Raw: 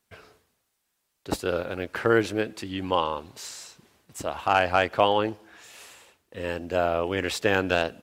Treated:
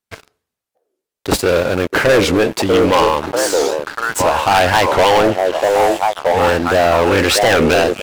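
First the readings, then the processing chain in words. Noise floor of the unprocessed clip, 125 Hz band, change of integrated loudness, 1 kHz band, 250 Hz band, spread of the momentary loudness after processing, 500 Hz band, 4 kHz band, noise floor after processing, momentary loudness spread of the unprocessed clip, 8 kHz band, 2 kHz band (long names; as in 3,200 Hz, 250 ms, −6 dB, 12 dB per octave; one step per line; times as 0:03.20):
−77 dBFS, +12.5 dB, +12.0 dB, +12.5 dB, +12.5 dB, 5 LU, +13.5 dB, +13.5 dB, −84 dBFS, 17 LU, +17.5 dB, +12.0 dB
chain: echo through a band-pass that steps 641 ms, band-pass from 460 Hz, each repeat 0.7 octaves, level −4 dB
leveller curve on the samples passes 5
wow of a warped record 45 rpm, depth 250 cents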